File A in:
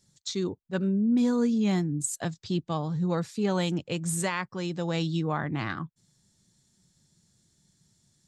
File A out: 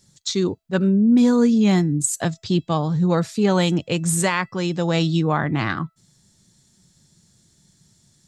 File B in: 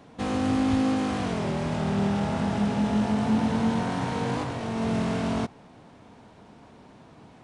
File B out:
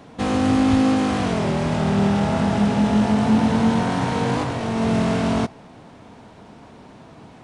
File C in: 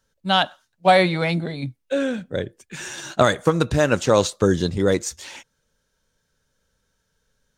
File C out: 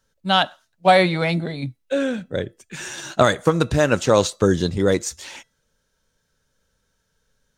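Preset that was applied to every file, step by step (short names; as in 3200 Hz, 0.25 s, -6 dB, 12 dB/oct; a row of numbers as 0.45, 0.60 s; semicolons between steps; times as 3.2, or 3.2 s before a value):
resonator 660 Hz, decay 0.33 s, mix 40%; match loudness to -20 LUFS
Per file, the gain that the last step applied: +13.0, +11.0, +5.0 dB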